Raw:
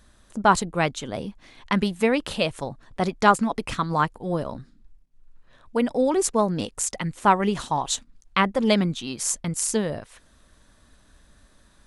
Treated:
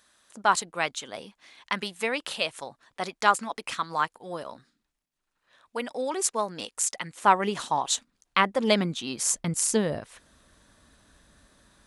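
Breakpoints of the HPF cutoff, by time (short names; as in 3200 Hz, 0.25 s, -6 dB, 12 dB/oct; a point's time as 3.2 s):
HPF 6 dB/oct
6.93 s 1200 Hz
7.37 s 440 Hz
8.47 s 440 Hz
9.13 s 190 Hz
9.49 s 81 Hz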